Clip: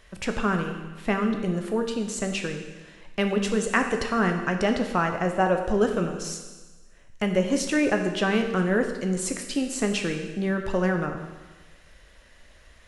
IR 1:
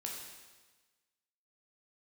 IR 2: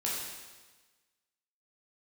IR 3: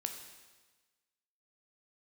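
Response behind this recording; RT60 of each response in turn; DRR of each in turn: 3; 1.3, 1.3, 1.3 seconds; −1.5, −6.0, 4.5 decibels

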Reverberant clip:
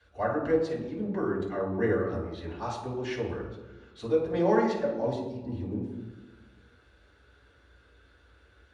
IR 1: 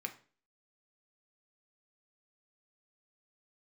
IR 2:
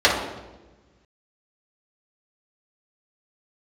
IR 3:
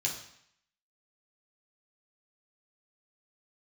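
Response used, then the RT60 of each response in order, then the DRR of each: 2; 0.40, 1.2, 0.70 seconds; 4.0, −6.5, −2.5 decibels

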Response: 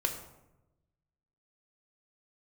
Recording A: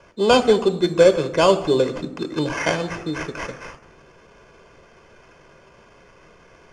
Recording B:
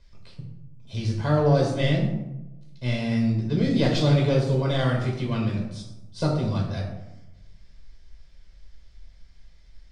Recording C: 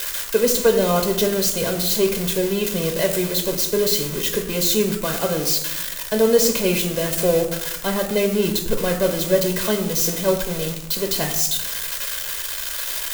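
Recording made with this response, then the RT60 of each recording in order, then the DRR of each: C; 1.0, 0.95, 0.95 seconds; 10.0, −1.0, 4.5 decibels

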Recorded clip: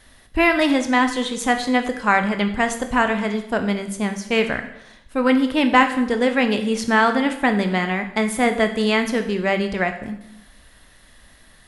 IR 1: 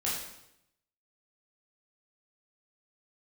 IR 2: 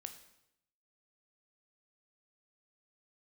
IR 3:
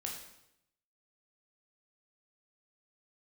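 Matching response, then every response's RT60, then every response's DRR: 2; 0.80, 0.80, 0.80 seconds; −7.0, 7.0, −1.0 decibels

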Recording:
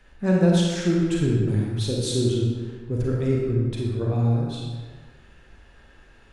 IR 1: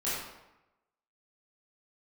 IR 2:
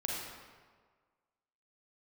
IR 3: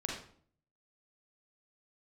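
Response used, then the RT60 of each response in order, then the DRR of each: 2; 0.95, 1.6, 0.55 seconds; −11.0, −3.5, −1.5 decibels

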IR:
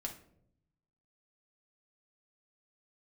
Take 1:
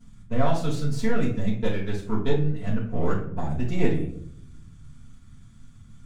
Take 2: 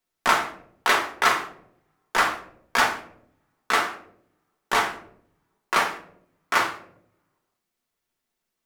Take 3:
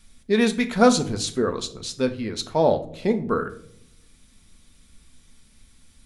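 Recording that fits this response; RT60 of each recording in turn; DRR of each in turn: 2; non-exponential decay, non-exponential decay, non-exponential decay; −9.0, 0.5, 6.5 decibels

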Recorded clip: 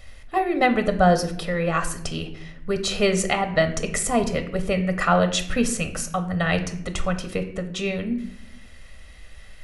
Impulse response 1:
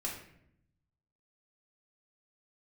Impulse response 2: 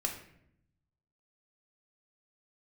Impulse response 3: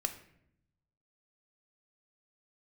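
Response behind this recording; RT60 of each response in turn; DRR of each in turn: 3; 0.70, 0.70, 0.70 seconds; −3.0, 1.5, 7.0 decibels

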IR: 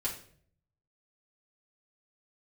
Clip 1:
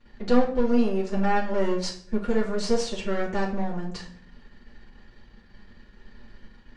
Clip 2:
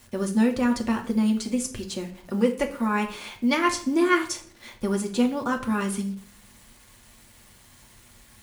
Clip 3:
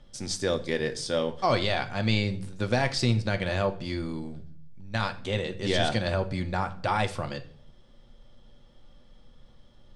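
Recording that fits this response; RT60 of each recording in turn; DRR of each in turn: 1; 0.55, 0.55, 0.55 seconds; −6.5, 1.5, 6.5 decibels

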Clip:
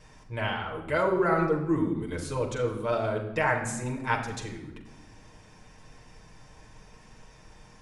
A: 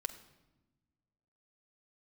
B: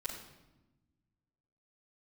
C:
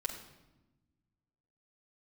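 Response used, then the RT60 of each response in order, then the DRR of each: C; 1.1, 1.0, 1.0 seconds; 6.0, −8.5, −1.5 decibels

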